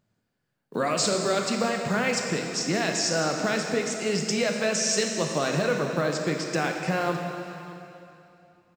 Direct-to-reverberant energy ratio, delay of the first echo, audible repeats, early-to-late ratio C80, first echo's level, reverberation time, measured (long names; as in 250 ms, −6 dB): 2.0 dB, 611 ms, 1, 4.0 dB, −19.0 dB, 2.8 s